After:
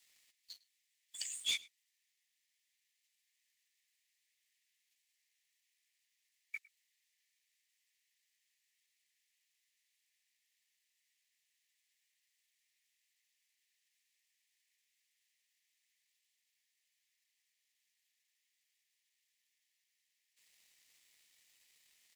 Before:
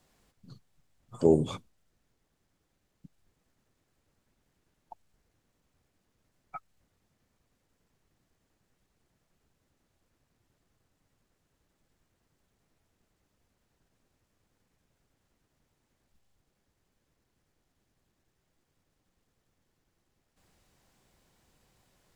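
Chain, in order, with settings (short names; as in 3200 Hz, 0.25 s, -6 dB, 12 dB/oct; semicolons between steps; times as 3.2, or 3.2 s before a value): steep high-pass 1800 Hz 96 dB/oct; sample leveller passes 2; outdoor echo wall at 18 m, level -22 dB; gain +5 dB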